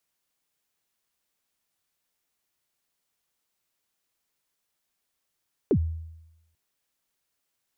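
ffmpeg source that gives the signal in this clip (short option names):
-f lavfi -i "aevalsrc='0.158*pow(10,-3*t/0.93)*sin(2*PI*(480*0.071/log(81/480)*(exp(log(81/480)*min(t,0.071)/0.071)-1)+81*max(t-0.071,0)))':d=0.84:s=44100"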